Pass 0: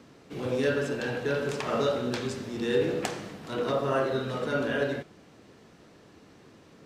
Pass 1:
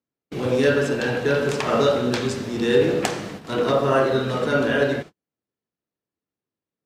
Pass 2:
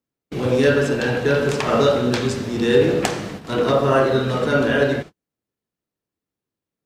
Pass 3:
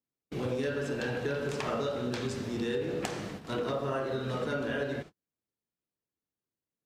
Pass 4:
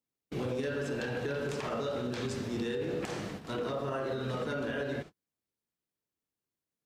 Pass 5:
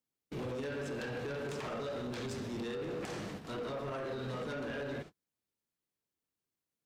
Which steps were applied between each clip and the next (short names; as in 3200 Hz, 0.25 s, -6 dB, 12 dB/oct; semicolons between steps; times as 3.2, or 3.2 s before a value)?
gate -42 dBFS, range -45 dB; gain +8 dB
low shelf 87 Hz +7.5 dB; gain +2 dB
compressor, threshold -20 dBFS, peak gain reduction 9.5 dB; gain -9 dB
limiter -25.5 dBFS, peak gain reduction 9 dB
soft clip -33.5 dBFS, distortion -13 dB; gain -1 dB